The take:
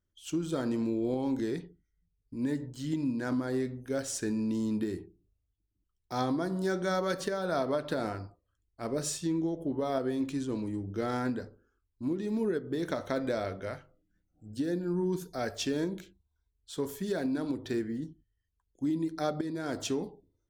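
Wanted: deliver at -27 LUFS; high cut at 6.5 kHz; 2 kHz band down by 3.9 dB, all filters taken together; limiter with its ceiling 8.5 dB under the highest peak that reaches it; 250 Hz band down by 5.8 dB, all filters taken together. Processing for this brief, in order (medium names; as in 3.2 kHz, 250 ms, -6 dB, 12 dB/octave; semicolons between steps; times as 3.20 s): low-pass 6.5 kHz; peaking EQ 250 Hz -7.5 dB; peaking EQ 2 kHz -5.5 dB; trim +11.5 dB; peak limiter -16.5 dBFS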